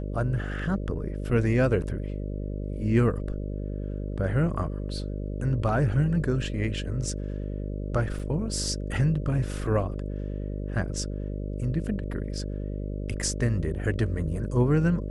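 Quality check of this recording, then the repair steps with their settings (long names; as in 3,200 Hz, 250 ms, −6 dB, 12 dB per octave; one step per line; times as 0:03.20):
mains buzz 50 Hz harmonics 12 −32 dBFS
0:08.19: drop-out 4.9 ms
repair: hum removal 50 Hz, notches 12
repair the gap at 0:08.19, 4.9 ms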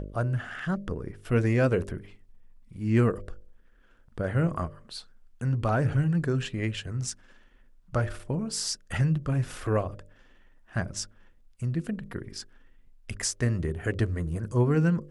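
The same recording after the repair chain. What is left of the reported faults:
none of them is left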